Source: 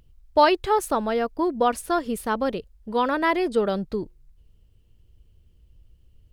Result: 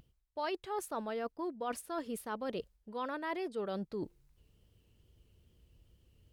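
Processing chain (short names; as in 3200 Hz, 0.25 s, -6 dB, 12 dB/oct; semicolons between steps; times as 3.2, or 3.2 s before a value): HPF 160 Hz 6 dB/oct; reverse; compressor 5:1, threshold -37 dBFS, peak gain reduction 21.5 dB; reverse; vibrato 2.4 Hz 44 cents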